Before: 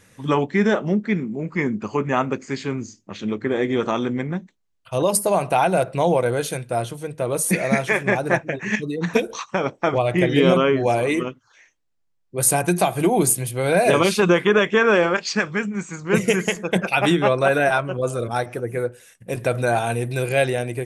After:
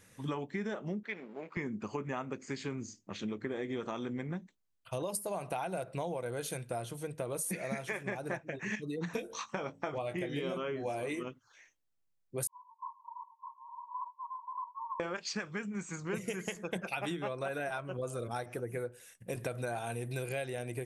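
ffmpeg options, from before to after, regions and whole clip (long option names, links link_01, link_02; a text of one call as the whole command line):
ffmpeg -i in.wav -filter_complex "[0:a]asettb=1/sr,asplit=3[link_01][link_02][link_03];[link_01]atrim=end=1.034[link_04];[link_02]atrim=start=1.03:end=1.57,asetpts=PTS-STARTPTS,afade=type=in:duration=0.004:curve=qsin,afade=type=out:start_time=0.536:duration=0.004:curve=qsin,aeval=exprs='if(lt(val(0),0),0.447*val(0),val(0))':channel_layout=same,highpass=450,lowpass=3100,highshelf=frequency=2100:gain=9[link_05];[link_03]atrim=start=1.566[link_06];[link_04][link_05]acrossfade=duration=0.004:curve1=hsin:curve2=qsin[link_07];[link_07][link_06]acrossfade=duration=0.004:curve1=qsin:curve2=hsin,asettb=1/sr,asplit=3[link_08][link_09][link_10];[link_08]atrim=end=9.164[link_11];[link_09]atrim=start=9.16:end=11.23,asetpts=PTS-STARTPTS,afade=type=in:duration=0.004:curve=qsin,afade=type=out:start_time=2.066:duration=0.004:curve=qsin,asplit=2[link_12][link_13];[link_13]adelay=20,volume=-9dB[link_14];[link_12][link_14]amix=inputs=2:normalize=0,atrim=end_sample=91287,bandreject=frequency=54.84:width_type=h:width=4,bandreject=frequency=109.68:width_type=h:width=4,bandreject=frequency=164.52:width_type=h:width=4,bandreject=frequency=219.36:width_type=h:width=4,bandreject=frequency=274.2:width_type=h:width=4[link_15];[link_10]atrim=start=11.226[link_16];[link_11][link_15]acrossfade=duration=0.004:curve1=hsin:curve2=qsin[link_17];[link_17][link_16]acrossfade=duration=0.004:curve1=qsin:curve2=hsin,asettb=1/sr,asplit=3[link_18][link_19][link_20];[link_18]atrim=end=12.474[link_21];[link_19]atrim=start=12.47:end=15,asetpts=PTS-STARTPTS,afade=type=in:duration=0.004:curve=qsin,afade=type=out:start_time=2.526:duration=0.004:curve=qsin,asuperpass=centerf=1000:order=20:qfactor=5,aecho=1:1:608:0.631,atrim=end_sample=111573[link_22];[link_20]atrim=start=14.996[link_23];[link_21][link_22]acrossfade=duration=0.004:curve1=hsin:curve2=qsin[link_24];[link_24][link_23]acrossfade=duration=0.004:curve1=qsin:curve2=hsin,highshelf=frequency=9200:gain=6,acompressor=threshold=-26dB:ratio=6,volume=-8dB" out.wav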